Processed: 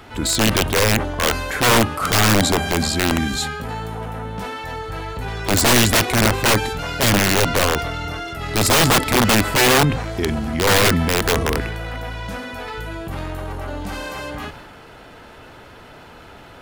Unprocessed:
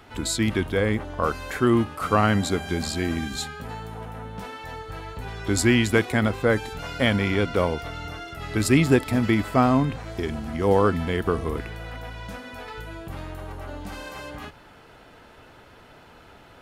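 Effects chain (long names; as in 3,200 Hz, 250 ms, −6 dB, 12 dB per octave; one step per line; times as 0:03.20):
wrap-around overflow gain 16 dB
transient designer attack −3 dB, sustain +4 dB
level +7.5 dB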